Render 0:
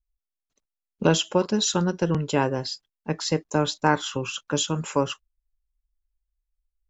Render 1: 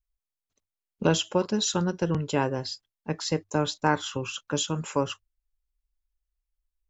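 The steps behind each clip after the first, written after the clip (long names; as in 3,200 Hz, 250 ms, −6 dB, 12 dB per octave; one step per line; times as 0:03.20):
parametric band 97 Hz +10 dB 0.22 octaves
level −3 dB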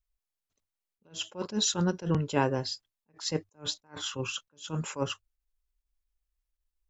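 level that may rise only so fast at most 250 dB per second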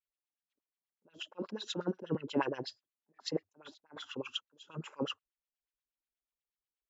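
auto-filter band-pass sine 8.3 Hz 240–3,300 Hz
level +1.5 dB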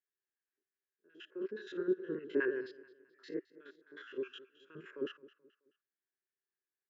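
spectrum averaged block by block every 50 ms
pair of resonant band-passes 800 Hz, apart 2.1 octaves
repeating echo 215 ms, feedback 38%, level −19.5 dB
level +10.5 dB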